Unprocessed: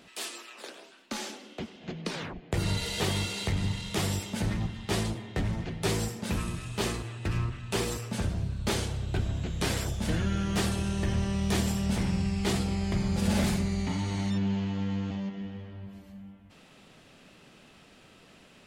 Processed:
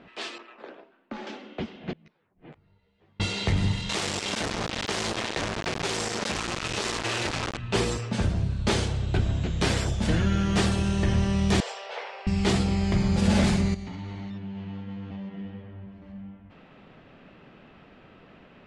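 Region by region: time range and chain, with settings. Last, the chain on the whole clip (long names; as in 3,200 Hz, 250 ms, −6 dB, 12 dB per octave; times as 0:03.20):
0:00.38–0:01.27: noise gate −50 dBFS, range −7 dB + high-shelf EQ 2,300 Hz −11.5 dB + downward compressor 1.5 to 1, threshold −43 dBFS
0:01.93–0:03.20: gate with flip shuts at −31 dBFS, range −42 dB + compressor whose output falls as the input rises −49 dBFS, ratio −0.5 + string-ensemble chorus
0:03.89–0:07.57: downward compressor 20 to 1, threshold −36 dBFS + log-companded quantiser 2 bits + bass and treble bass −10 dB, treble +2 dB
0:11.60–0:12.27: Chebyshev high-pass filter 460 Hz, order 5 + high-frequency loss of the air 100 metres
0:13.74–0:16.02: downward compressor 10 to 1, threshold −33 dBFS + flanger 1.5 Hz, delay 2.3 ms, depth 7.7 ms, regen −73%
whole clip: Bessel low-pass filter 6,900 Hz, order 8; low-pass that shuts in the quiet parts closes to 1,900 Hz, open at −26.5 dBFS; level +5 dB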